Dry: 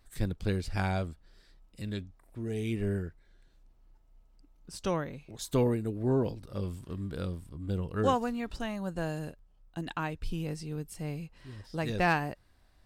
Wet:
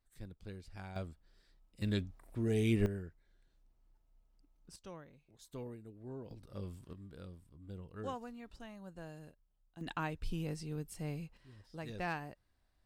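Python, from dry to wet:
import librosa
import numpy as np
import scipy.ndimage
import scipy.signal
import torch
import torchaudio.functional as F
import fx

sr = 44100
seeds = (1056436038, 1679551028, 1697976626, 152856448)

y = fx.gain(x, sr, db=fx.steps((0.0, -17.5), (0.96, -8.5), (1.82, 2.0), (2.86, -9.0), (4.76, -19.0), (6.31, -9.0), (6.93, -15.0), (9.81, -4.0), (11.37, -12.0)))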